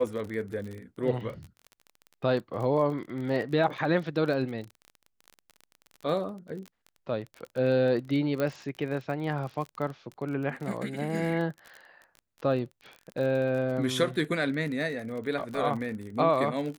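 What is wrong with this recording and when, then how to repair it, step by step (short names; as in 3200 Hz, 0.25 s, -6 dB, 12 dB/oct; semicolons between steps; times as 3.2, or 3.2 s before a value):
crackle 31/s -35 dBFS
8.4 pop -17 dBFS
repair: de-click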